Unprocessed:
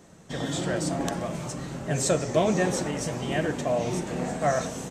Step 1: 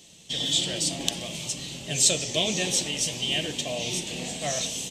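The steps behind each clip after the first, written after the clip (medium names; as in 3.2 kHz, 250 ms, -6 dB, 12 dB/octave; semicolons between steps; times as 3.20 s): resonant high shelf 2.1 kHz +13.5 dB, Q 3; trim -6 dB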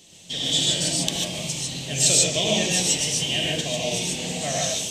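gated-style reverb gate 170 ms rising, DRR -2 dB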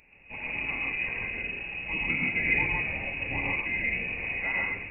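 frequency inversion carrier 2.7 kHz; trim -1.5 dB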